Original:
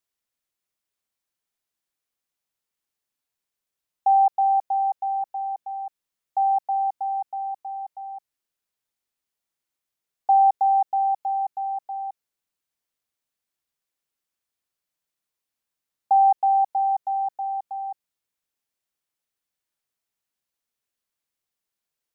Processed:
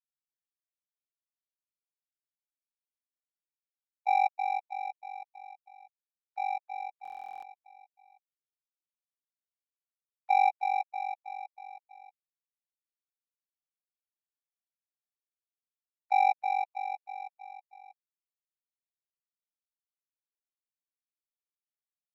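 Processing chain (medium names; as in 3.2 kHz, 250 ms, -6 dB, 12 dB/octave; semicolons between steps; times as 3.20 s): formants replaced by sine waves; power-law waveshaper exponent 2; buffer glitch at 7.03 s, samples 1024, times 16; trim -5 dB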